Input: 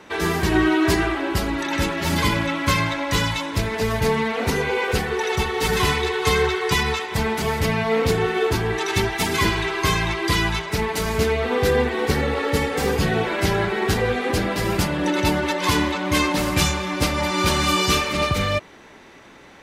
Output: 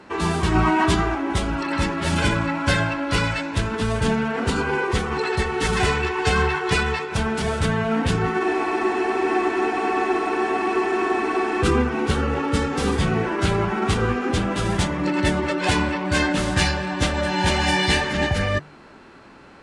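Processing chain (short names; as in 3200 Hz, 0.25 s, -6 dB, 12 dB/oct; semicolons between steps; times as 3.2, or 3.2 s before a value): de-hum 149.4 Hz, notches 3; formant shift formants -6 st; spectral freeze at 8.45, 3.17 s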